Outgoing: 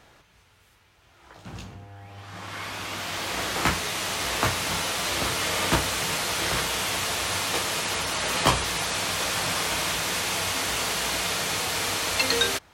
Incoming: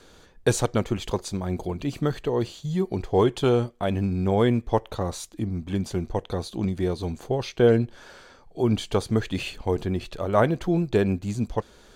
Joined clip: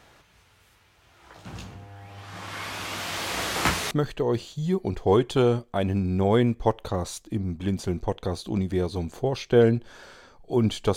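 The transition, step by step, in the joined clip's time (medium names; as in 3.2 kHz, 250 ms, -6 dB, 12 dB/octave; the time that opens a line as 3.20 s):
outgoing
3.91 s: go over to incoming from 1.98 s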